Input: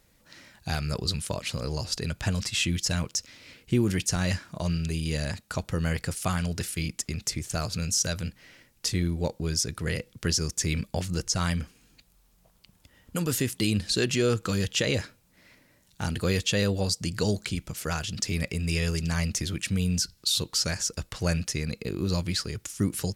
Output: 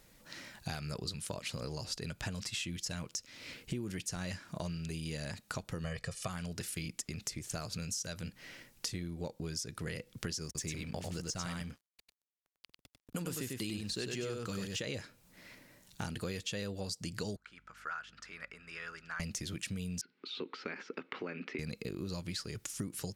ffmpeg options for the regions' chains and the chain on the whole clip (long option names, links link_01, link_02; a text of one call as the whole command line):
ffmpeg -i in.wav -filter_complex "[0:a]asettb=1/sr,asplit=3[link_01][link_02][link_03];[link_01]atrim=end=5.844[link_04];[link_02]atrim=start=5.84:end=6.27,asetpts=PTS-STARTPTS,afade=type=in:duration=0.004:curve=qsin,afade=type=out:start_time=0.426:duration=0.004:curve=qsin,lowpass=7700,aecho=1:1:1.7:0.99,atrim=end_sample=18963[link_05];[link_03]atrim=start=6.266[link_06];[link_04][link_05]acrossfade=duration=0.004:curve1=hsin:curve2=qsin[link_07];[link_07][link_06]acrossfade=duration=0.004:curve1=qsin:curve2=hsin,asettb=1/sr,asplit=3[link_08][link_09][link_10];[link_08]atrim=end=10.454[link_11];[link_09]atrim=start=10.45:end=14.8,asetpts=PTS-STARTPTS,afade=type=in:duration=0.004:curve=qsin,afade=type=out:start_time=4.346:duration=0.004:curve=qsin,aeval=exprs='sgn(val(0))*max(abs(val(0))-0.00316,0)':channel_layout=same,aecho=1:1:97:0.631,atrim=end_sample=191835[link_12];[link_10]atrim=start=14.796[link_13];[link_11][link_12]acrossfade=duration=0.004:curve1=hsin:curve2=qsin[link_14];[link_14][link_13]acrossfade=duration=0.004:curve1=qsin:curve2=hsin,asettb=1/sr,asplit=3[link_15][link_16][link_17];[link_15]atrim=end=17.364[link_18];[link_16]atrim=start=17.36:end=19.2,asetpts=PTS-STARTPTS,afade=type=in:duration=0.004:curve=qsin,afade=type=out:start_time=1.836:duration=0.004:curve=qsin,bandpass=frequency=1400:width_type=q:width=4.5,aeval=exprs='val(0)+0.000447*(sin(2*PI*50*n/s)+sin(2*PI*2*50*n/s)/2+sin(2*PI*3*50*n/s)/3+sin(2*PI*4*50*n/s)/4+sin(2*PI*5*50*n/s)/5)':channel_layout=same[link_19];[link_17]atrim=start=19.196[link_20];[link_18][link_19]acrossfade=duration=0.004:curve1=hsin:curve2=qsin[link_21];[link_21][link_20]acrossfade=duration=0.004:curve1=qsin:curve2=hsin,asettb=1/sr,asplit=3[link_22][link_23][link_24];[link_22]atrim=end=20.014[link_25];[link_23]atrim=start=20.01:end=21.59,asetpts=PTS-STARTPTS,afade=type=in:duration=0.004:curve=qsin,afade=type=out:start_time=1.576:duration=0.004:curve=qsin,acompressor=threshold=-33dB:ratio=2.5:attack=3.2:release=140:knee=1:detection=peak,highpass=frequency=220:width=0.5412,highpass=frequency=220:width=1.3066,equalizer=frequency=260:width_type=q:width=4:gain=8,equalizer=frequency=400:width_type=q:width=4:gain=9,equalizer=frequency=640:width_type=q:width=4:gain=-6,equalizer=frequency=1300:width_type=q:width=4:gain=5,equalizer=frequency=2200:width_type=q:width=4:gain=7,lowpass=frequency=2900:width=0.5412,lowpass=frequency=2900:width=1.3066[link_26];[link_24]atrim=start=21.586[link_27];[link_25][link_26]acrossfade=duration=0.004:curve1=hsin:curve2=qsin[link_28];[link_28][link_27]acrossfade=duration=0.004:curve1=qsin:curve2=hsin,equalizer=frequency=72:width=1.9:gain=-8,acompressor=threshold=-39dB:ratio=6,volume=2dB" out.wav